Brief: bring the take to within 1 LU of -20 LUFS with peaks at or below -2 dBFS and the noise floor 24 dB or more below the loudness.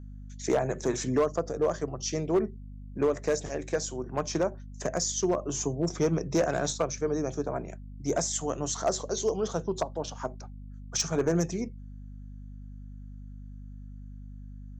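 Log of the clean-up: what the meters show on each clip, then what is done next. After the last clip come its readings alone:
clipped 0.5%; flat tops at -18.5 dBFS; hum 50 Hz; harmonics up to 250 Hz; hum level -41 dBFS; loudness -30.0 LUFS; peak -18.5 dBFS; loudness target -20.0 LUFS
-> clip repair -18.5 dBFS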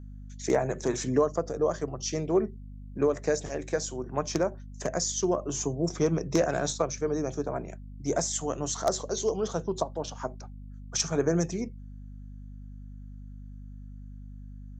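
clipped 0.0%; hum 50 Hz; harmonics up to 250 Hz; hum level -41 dBFS
-> de-hum 50 Hz, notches 5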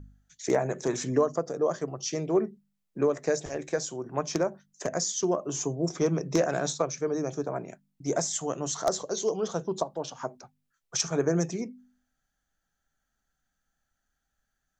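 hum none; loudness -29.5 LUFS; peak -9.5 dBFS; loudness target -20.0 LUFS
-> gain +9.5 dB; limiter -2 dBFS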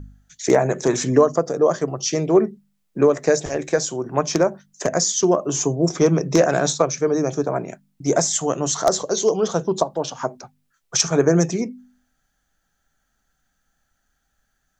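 loudness -20.5 LUFS; peak -2.0 dBFS; noise floor -72 dBFS

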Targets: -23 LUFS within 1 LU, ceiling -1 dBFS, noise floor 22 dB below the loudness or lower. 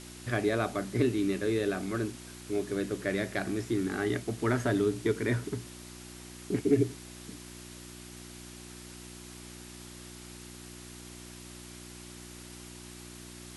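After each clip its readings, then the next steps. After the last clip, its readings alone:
hum 60 Hz; harmonics up to 360 Hz; hum level -46 dBFS; noise floor -47 dBFS; noise floor target -53 dBFS; loudness -31.0 LUFS; peak -13.0 dBFS; loudness target -23.0 LUFS
-> de-hum 60 Hz, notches 6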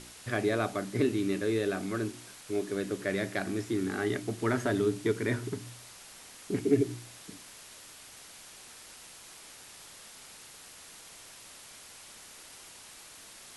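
hum none; noise floor -51 dBFS; noise floor target -54 dBFS
-> denoiser 6 dB, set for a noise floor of -51 dBFS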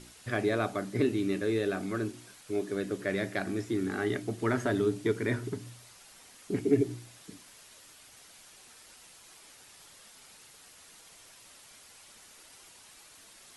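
noise floor -55 dBFS; loudness -31.5 LUFS; peak -12.5 dBFS; loudness target -23.0 LUFS
-> gain +8.5 dB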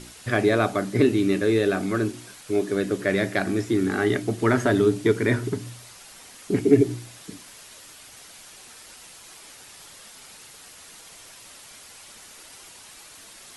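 loudness -23.0 LUFS; peak -4.0 dBFS; noise floor -47 dBFS

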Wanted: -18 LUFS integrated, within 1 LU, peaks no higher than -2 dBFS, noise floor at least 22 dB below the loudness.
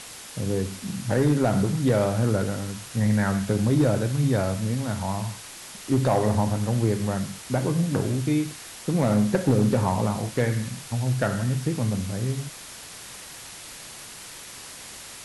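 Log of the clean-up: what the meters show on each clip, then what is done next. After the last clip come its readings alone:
clipped 0.3%; flat tops at -13.5 dBFS; noise floor -42 dBFS; noise floor target -47 dBFS; loudness -25.0 LUFS; peak -13.5 dBFS; loudness target -18.0 LUFS
-> clip repair -13.5 dBFS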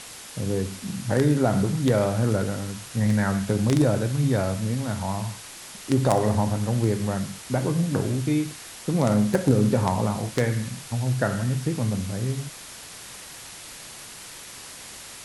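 clipped 0.0%; noise floor -42 dBFS; noise floor target -47 dBFS
-> denoiser 6 dB, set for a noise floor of -42 dBFS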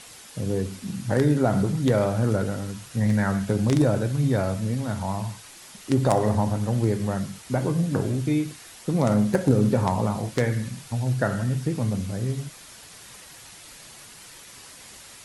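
noise floor -46 dBFS; noise floor target -47 dBFS
-> denoiser 6 dB, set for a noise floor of -46 dBFS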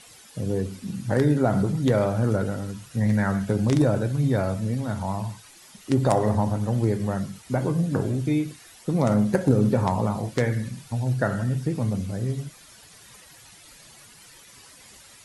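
noise floor -50 dBFS; loudness -24.5 LUFS; peak -4.5 dBFS; loudness target -18.0 LUFS
-> gain +6.5 dB; limiter -2 dBFS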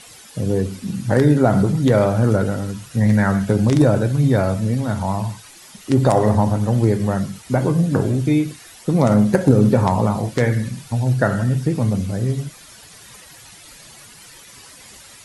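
loudness -18.5 LUFS; peak -2.0 dBFS; noise floor -43 dBFS

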